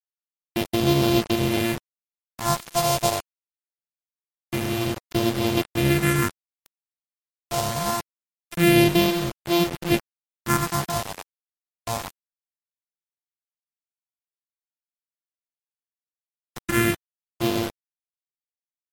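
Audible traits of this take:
a buzz of ramps at a fixed pitch in blocks of 128 samples
phaser sweep stages 4, 0.24 Hz, lowest notch 280–1,600 Hz
a quantiser's noise floor 6 bits, dither none
MP3

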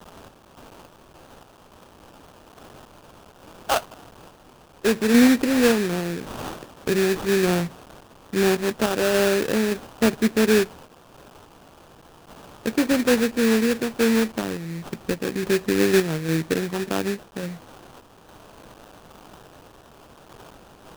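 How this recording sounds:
a quantiser's noise floor 8 bits, dither triangular
sample-and-hold tremolo 3.5 Hz
aliases and images of a low sample rate 2,100 Hz, jitter 20%

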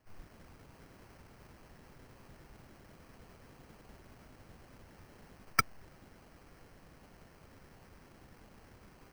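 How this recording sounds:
aliases and images of a low sample rate 3,600 Hz, jitter 0%

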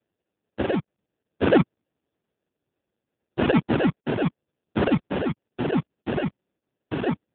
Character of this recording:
tremolo triangle 0.9 Hz, depth 55%
aliases and images of a low sample rate 1,100 Hz, jitter 0%
AMR narrowband

